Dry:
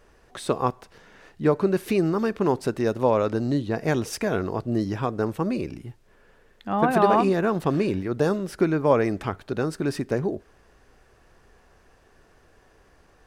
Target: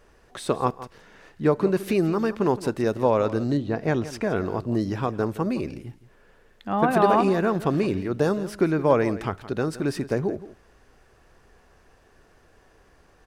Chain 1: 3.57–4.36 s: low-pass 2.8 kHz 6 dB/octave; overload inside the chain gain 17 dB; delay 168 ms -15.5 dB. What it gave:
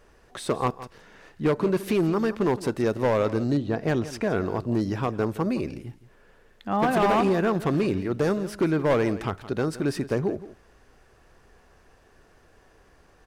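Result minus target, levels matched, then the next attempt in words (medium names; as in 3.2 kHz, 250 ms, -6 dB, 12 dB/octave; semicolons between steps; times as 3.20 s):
overload inside the chain: distortion +40 dB
3.57–4.36 s: low-pass 2.8 kHz 6 dB/octave; overload inside the chain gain 7 dB; delay 168 ms -15.5 dB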